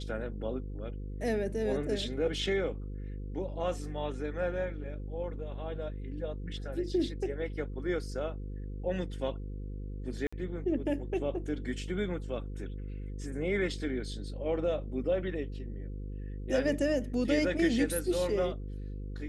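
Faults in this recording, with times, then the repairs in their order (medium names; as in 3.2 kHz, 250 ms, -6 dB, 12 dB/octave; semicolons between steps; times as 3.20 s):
buzz 50 Hz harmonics 10 -39 dBFS
10.27–10.32 s: dropout 55 ms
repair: de-hum 50 Hz, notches 10; interpolate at 10.27 s, 55 ms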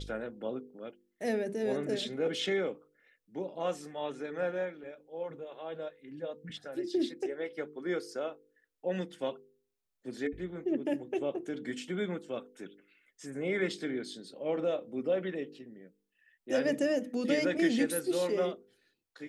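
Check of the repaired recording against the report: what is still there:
nothing left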